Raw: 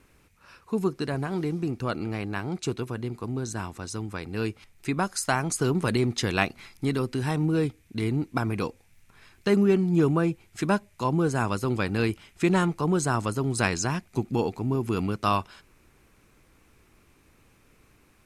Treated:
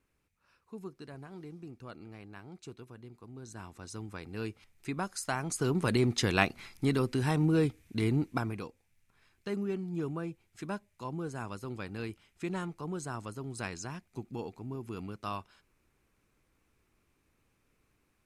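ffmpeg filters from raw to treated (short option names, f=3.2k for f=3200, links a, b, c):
-af "volume=-2dB,afade=t=in:st=3.32:d=0.67:silence=0.354813,afade=t=in:st=5.36:d=0.75:silence=0.473151,afade=t=out:st=8.18:d=0.47:silence=0.266073"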